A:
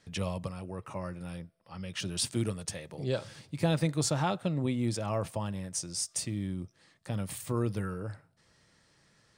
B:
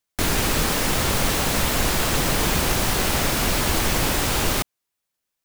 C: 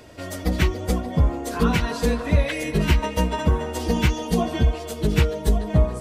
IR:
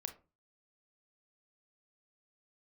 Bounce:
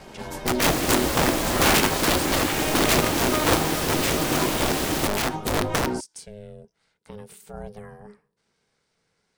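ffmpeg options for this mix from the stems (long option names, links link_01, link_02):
-filter_complex "[0:a]volume=-4dB,asplit=2[link_01][link_02];[1:a]adelay=450,volume=-1.5dB[link_03];[2:a]flanger=delay=17:depth=2.7:speed=2.4,acontrast=33,aeval=exprs='(mod(5.01*val(0)+1,2)-1)/5.01':channel_layout=same,volume=0.5dB,asplit=2[link_04][link_05];[link_05]volume=-5.5dB[link_06];[link_02]apad=whole_len=264852[link_07];[link_04][link_07]sidechaincompress=threshold=-42dB:ratio=4:attack=28:release=431[link_08];[3:a]atrim=start_sample=2205[link_09];[link_06][link_09]afir=irnorm=-1:irlink=0[link_10];[link_01][link_03][link_08][link_10]amix=inputs=4:normalize=0,aeval=exprs='val(0)*sin(2*PI*310*n/s)':channel_layout=same"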